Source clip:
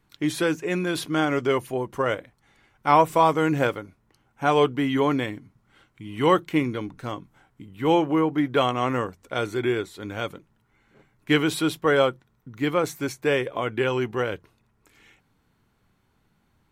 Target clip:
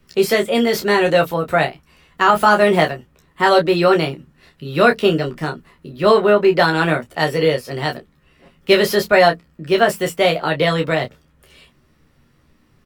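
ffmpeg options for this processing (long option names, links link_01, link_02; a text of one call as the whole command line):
ffmpeg -i in.wav -filter_complex "[0:a]lowshelf=frequency=87:gain=6.5,acrossover=split=270|840|2800[link_01][link_02][link_03][link_04];[link_04]volume=31dB,asoftclip=hard,volume=-31dB[link_05];[link_01][link_02][link_03][link_05]amix=inputs=4:normalize=0,asetrate=57330,aresample=44100,aecho=1:1:13|29:0.596|0.447,alimiter=level_in=7dB:limit=-1dB:release=50:level=0:latency=1,volume=-1dB" out.wav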